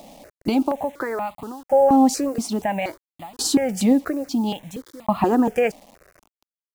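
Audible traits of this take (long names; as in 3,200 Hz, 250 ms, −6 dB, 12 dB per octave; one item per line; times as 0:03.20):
tremolo saw down 0.59 Hz, depth 100%
a quantiser's noise floor 8 bits, dither none
notches that jump at a steady rate 4.2 Hz 400–1,600 Hz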